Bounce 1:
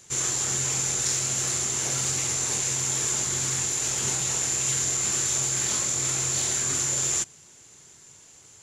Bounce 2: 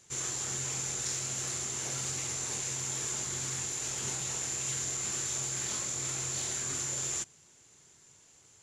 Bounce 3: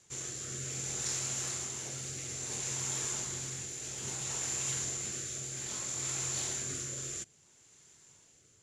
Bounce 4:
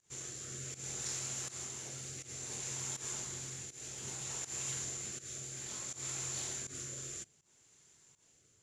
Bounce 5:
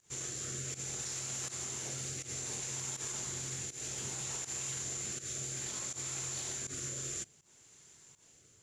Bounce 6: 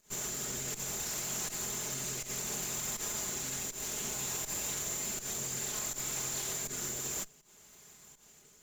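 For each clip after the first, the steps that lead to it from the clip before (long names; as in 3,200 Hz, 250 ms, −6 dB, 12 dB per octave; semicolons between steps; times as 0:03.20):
high-shelf EQ 9,000 Hz −4 dB; level −7.5 dB
rotating-speaker cabinet horn 0.6 Hz
fake sidechain pumping 81 BPM, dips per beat 1, −17 dB, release 146 ms; level −4.5 dB
brickwall limiter −35.5 dBFS, peak gain reduction 7.5 dB; level +5.5 dB
lower of the sound and its delayed copy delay 4.8 ms; level +4.5 dB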